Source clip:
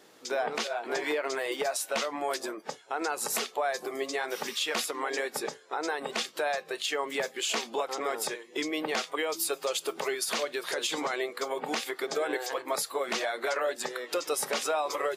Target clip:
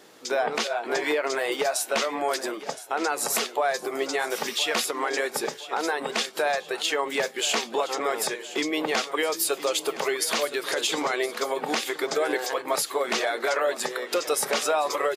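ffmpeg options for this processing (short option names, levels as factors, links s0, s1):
-af "aecho=1:1:1016|2032|3048|4064:0.178|0.0711|0.0285|0.0114,volume=1.78"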